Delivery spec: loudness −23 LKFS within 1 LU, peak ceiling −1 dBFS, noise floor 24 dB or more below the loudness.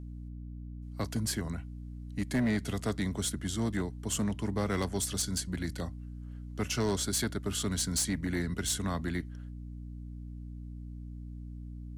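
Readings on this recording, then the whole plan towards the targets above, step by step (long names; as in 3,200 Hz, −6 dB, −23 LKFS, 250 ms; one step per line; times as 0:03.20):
share of clipped samples 1.4%; peaks flattened at −24.5 dBFS; mains hum 60 Hz; hum harmonics up to 300 Hz; level of the hum −40 dBFS; integrated loudness −33.0 LKFS; sample peak −24.5 dBFS; target loudness −23.0 LKFS
→ clipped peaks rebuilt −24.5 dBFS
hum removal 60 Hz, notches 5
level +10 dB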